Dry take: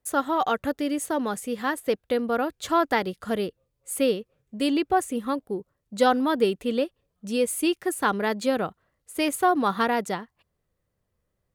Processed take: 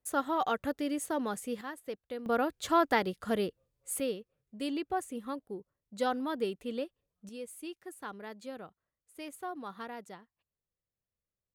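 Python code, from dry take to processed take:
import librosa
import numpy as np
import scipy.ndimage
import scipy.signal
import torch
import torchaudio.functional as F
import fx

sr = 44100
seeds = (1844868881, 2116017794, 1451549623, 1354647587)

y = fx.gain(x, sr, db=fx.steps((0.0, -6.5), (1.61, -15.0), (2.26, -4.0), (4.0, -11.0), (7.29, -19.0)))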